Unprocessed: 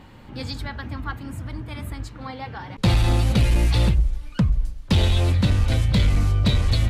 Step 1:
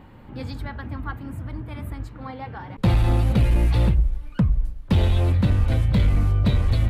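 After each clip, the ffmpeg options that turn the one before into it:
-af "equalizer=f=5.9k:w=0.54:g=-12"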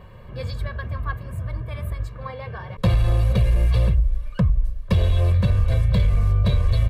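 -af "aecho=1:1:1.8:0.94,acompressor=threshold=-14dB:ratio=6"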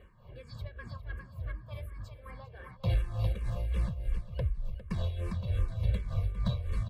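-filter_complex "[0:a]aecho=1:1:404|808|1212|1616|2020:0.398|0.163|0.0669|0.0274|0.0112,tremolo=f=3.4:d=0.67,asplit=2[a][b];[b]afreqshift=-2.7[c];[a][c]amix=inputs=2:normalize=1,volume=-7.5dB"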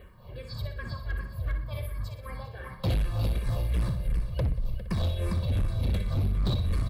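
-af "aexciter=amount=1.9:drive=1.7:freq=3.8k,aecho=1:1:61|122|183|244|305|366:0.398|0.191|0.0917|0.044|0.0211|0.0101,asoftclip=type=hard:threshold=-28.5dB,volume=6dB"

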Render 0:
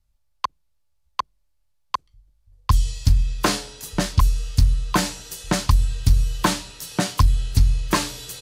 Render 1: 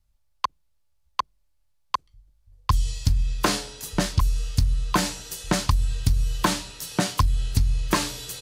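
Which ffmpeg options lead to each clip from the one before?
-af "acompressor=threshold=-16dB:ratio=6"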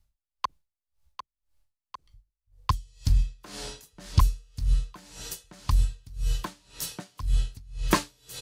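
-af "aeval=exprs='val(0)*pow(10,-30*(0.5-0.5*cos(2*PI*1.9*n/s))/20)':c=same,volume=2dB"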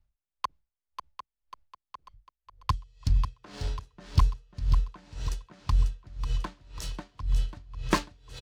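-af "adynamicsmooth=sensitivity=6:basefreq=3.5k,aecho=1:1:543|1086|1629|2172|2715:0.355|0.17|0.0817|0.0392|0.0188,volume=-2dB"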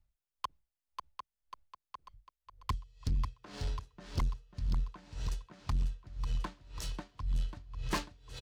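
-af "asoftclip=type=tanh:threshold=-24dB,volume=-2.5dB"

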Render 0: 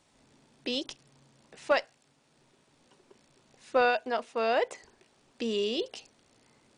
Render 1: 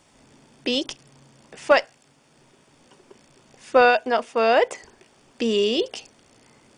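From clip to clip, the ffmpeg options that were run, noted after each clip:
-af "bandreject=f=4k:w=8.3,volume=9dB"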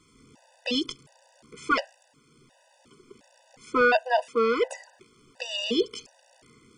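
-af "afftfilt=real='re*gt(sin(2*PI*1.4*pts/sr)*(1-2*mod(floor(b*sr/1024/500),2)),0)':imag='im*gt(sin(2*PI*1.4*pts/sr)*(1-2*mod(floor(b*sr/1024/500),2)),0)':win_size=1024:overlap=0.75"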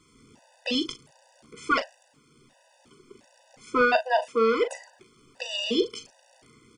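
-filter_complex "[0:a]asplit=2[a][b];[b]adelay=40,volume=-10dB[c];[a][c]amix=inputs=2:normalize=0"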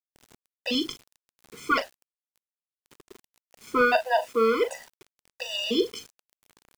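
-af "acrusher=bits=7:mix=0:aa=0.000001"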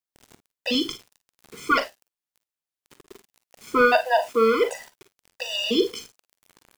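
-af "aecho=1:1:45|55:0.188|0.178,volume=3dB"

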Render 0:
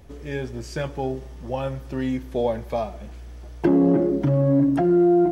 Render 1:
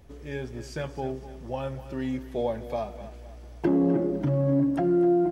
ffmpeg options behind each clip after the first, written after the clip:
-af "aecho=1:1:254|508|762|1016:0.2|0.0818|0.0335|0.0138,volume=-5dB"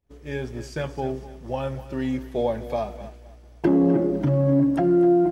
-af "agate=range=-33dB:threshold=-37dB:ratio=3:detection=peak,volume=4dB"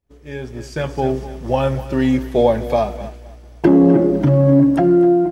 -af "dynaudnorm=f=350:g=5:m=11.5dB"

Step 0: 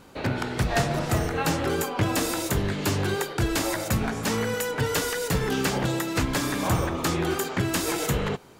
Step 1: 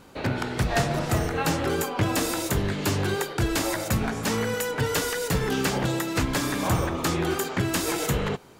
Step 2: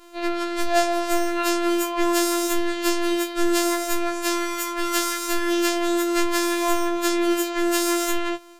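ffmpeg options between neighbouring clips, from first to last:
-af "aeval=exprs='0.224*(cos(1*acos(clip(val(0)/0.224,-1,1)))-cos(1*PI/2))+0.00316*(cos(5*acos(clip(val(0)/0.224,-1,1)))-cos(5*PI/2))+0.00224*(cos(7*acos(clip(val(0)/0.224,-1,1)))-cos(7*PI/2))':c=same"
-af "afftfilt=real='hypot(re,im)*cos(PI*b)':imag='0':win_size=512:overlap=0.75,afftfilt=real='re*4*eq(mod(b,16),0)':imag='im*4*eq(mod(b,16),0)':win_size=2048:overlap=0.75,volume=-2dB"

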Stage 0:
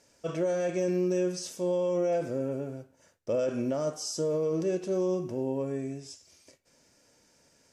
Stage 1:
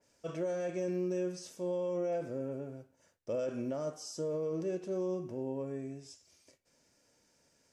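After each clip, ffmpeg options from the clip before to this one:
-af "adynamicequalizer=threshold=0.00251:dfrequency=2800:dqfactor=0.7:tfrequency=2800:tqfactor=0.7:attack=5:release=100:ratio=0.375:range=2:mode=cutabove:tftype=highshelf,volume=-6.5dB"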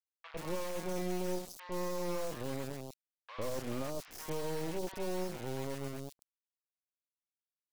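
-filter_complex "[0:a]acrusher=bits=4:dc=4:mix=0:aa=0.000001,acrossover=split=1000|3500[a][b][c];[a]adelay=100[d];[c]adelay=130[e];[d][b][e]amix=inputs=3:normalize=0,volume=1.5dB"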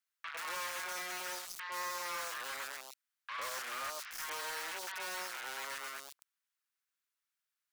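-af "highpass=f=1.4k:t=q:w=2,asoftclip=type=hard:threshold=-40dB,volume=5.5dB"

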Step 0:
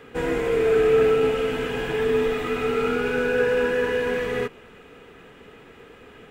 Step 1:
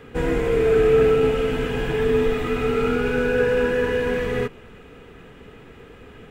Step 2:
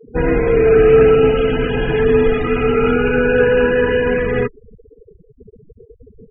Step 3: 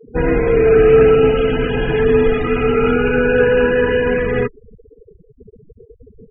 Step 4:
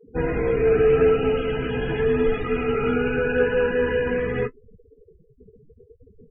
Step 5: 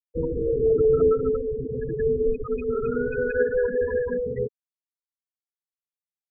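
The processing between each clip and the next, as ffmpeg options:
-af "lowshelf=f=180:g=11"
-af "highshelf=f=5.2k:g=6,afftfilt=real='re*gte(hypot(re,im),0.0398)':imag='im*gte(hypot(re,im),0.0398)':win_size=1024:overlap=0.75,volume=6.5dB"
-af anull
-af "flanger=delay=9.9:depth=6.7:regen=-26:speed=0.83:shape=triangular,volume=-4dB"
-af "bandreject=f=50:t=h:w=6,bandreject=f=100:t=h:w=6,bandreject=f=150:t=h:w=6,bandreject=f=200:t=h:w=6,bandreject=f=250:t=h:w=6,afftfilt=real='re*gte(hypot(re,im),0.2)':imag='im*gte(hypot(re,im),0.2)':win_size=1024:overlap=0.75,volume=-1.5dB"

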